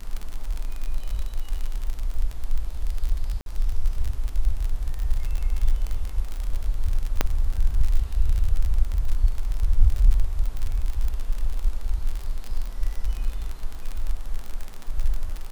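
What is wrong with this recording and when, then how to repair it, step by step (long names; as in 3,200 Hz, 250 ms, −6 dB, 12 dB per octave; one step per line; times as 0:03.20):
surface crackle 41 per second −25 dBFS
0:03.41–0:03.46: drop-out 52 ms
0:07.21: click −5 dBFS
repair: click removal
repair the gap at 0:03.41, 52 ms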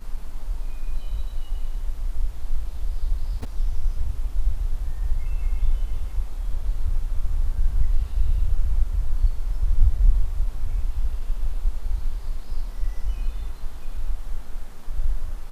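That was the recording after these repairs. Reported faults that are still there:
none of them is left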